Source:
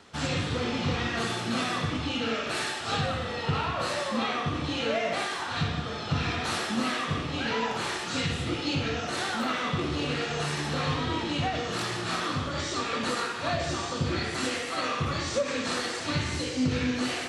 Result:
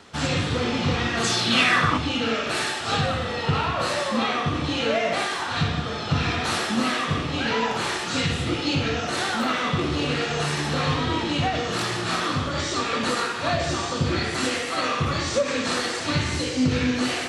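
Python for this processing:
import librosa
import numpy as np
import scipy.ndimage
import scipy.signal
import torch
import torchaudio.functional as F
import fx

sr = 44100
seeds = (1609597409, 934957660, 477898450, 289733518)

y = fx.peak_eq(x, sr, hz=fx.line((1.23, 7200.0), (1.97, 1000.0)), db=13.0, octaves=0.92, at=(1.23, 1.97), fade=0.02)
y = y * librosa.db_to_amplitude(5.0)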